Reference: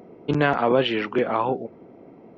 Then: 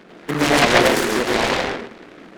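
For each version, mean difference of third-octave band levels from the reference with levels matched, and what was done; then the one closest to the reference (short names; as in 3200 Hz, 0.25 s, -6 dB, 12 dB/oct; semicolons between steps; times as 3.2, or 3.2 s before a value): 11.5 dB: HPF 140 Hz 24 dB/oct; high shelf 4100 Hz -6 dB; digital reverb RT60 0.52 s, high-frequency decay 0.4×, pre-delay 65 ms, DRR -3.5 dB; noise-modulated delay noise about 1200 Hz, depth 0.24 ms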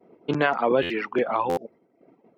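5.0 dB: expander -40 dBFS; reverb removal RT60 0.73 s; HPF 210 Hz 6 dB/oct; stuck buffer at 0.82/1.49, samples 512, times 6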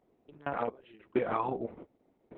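7.5 dB: treble ducked by the level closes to 2300 Hz, closed at -15 dBFS; compressor 12:1, threshold -25 dBFS, peak gain reduction 12 dB; step gate "..x..xxx" 65 bpm -24 dB; Opus 6 kbps 48000 Hz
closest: second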